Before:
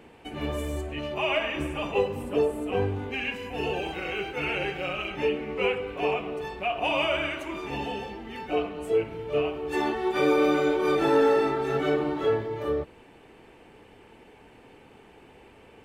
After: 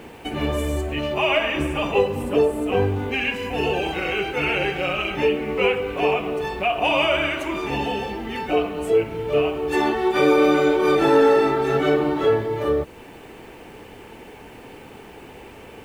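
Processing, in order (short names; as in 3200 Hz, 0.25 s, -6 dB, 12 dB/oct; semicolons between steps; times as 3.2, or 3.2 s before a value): in parallel at 0 dB: compressor, threshold -37 dBFS, peak gain reduction 18.5 dB; on the sum: bit-crush 10-bit; gain +4.5 dB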